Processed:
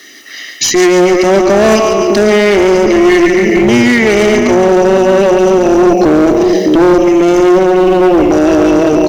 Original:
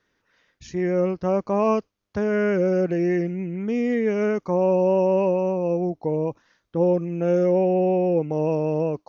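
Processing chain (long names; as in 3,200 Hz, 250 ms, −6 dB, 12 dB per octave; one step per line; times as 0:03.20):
Bessel high-pass filter 260 Hz, order 8
high-shelf EQ 4,600 Hz +8 dB
comb filter 1 ms, depth 86%
in parallel at −0.5 dB: downward compressor, threshold −36 dBFS, peak gain reduction 18.5 dB
on the sum: phaser with its sweep stopped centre 400 Hz, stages 4
on a send: echo with a time of its own for lows and highs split 380 Hz, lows 609 ms, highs 141 ms, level −6.5 dB
on the sum: speech leveller within 5 dB 0.5 s
asymmetric clip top −31.5 dBFS, bottom −23 dBFS
boost into a limiter +31 dB
level −1 dB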